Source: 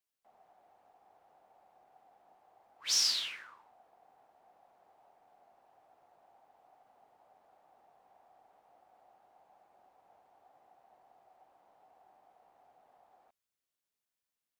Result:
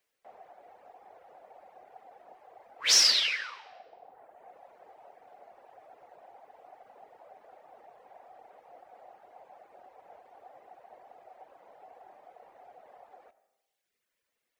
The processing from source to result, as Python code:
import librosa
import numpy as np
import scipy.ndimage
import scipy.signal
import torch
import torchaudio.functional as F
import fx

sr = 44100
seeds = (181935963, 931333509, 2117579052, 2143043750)

y = fx.graphic_eq_10(x, sr, hz=(500, 2000, 16000), db=(11, 8, -3))
y = fx.dereverb_blind(y, sr, rt60_s=1.2)
y = fx.rev_freeverb(y, sr, rt60_s=1.0, hf_ratio=0.95, predelay_ms=45, drr_db=15.0)
y = y * 10.0 ** (8.0 / 20.0)